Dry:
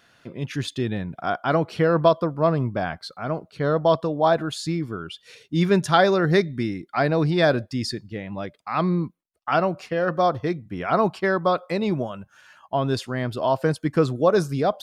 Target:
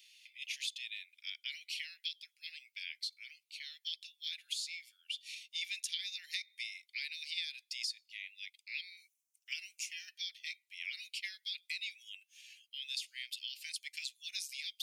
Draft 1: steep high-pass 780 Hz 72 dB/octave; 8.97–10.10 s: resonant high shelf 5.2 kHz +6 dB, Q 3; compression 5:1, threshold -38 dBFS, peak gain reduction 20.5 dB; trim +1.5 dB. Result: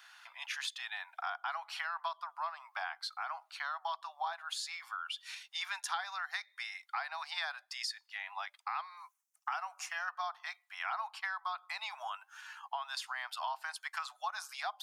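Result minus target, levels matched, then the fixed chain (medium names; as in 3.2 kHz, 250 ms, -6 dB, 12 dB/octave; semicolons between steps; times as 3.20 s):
2 kHz band +3.0 dB
steep high-pass 2.2 kHz 72 dB/octave; 8.97–10.10 s: resonant high shelf 5.2 kHz +6 dB, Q 3; compression 5:1, threshold -38 dBFS, peak gain reduction 12.5 dB; trim +1.5 dB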